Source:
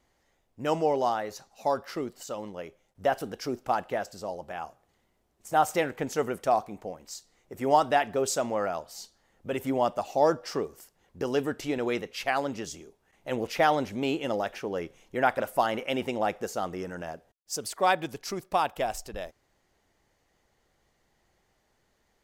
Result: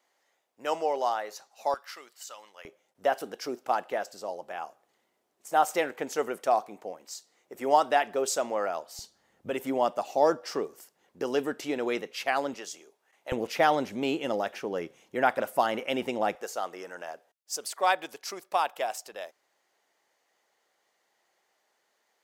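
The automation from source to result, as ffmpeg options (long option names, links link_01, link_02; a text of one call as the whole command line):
ffmpeg -i in.wav -af "asetnsamples=nb_out_samples=441:pad=0,asendcmd='1.74 highpass f 1300;2.65 highpass f 320;8.99 highpass f 110;9.5 highpass f 240;12.54 highpass f 530;13.32 highpass f 170;16.35 highpass f 520',highpass=520" out.wav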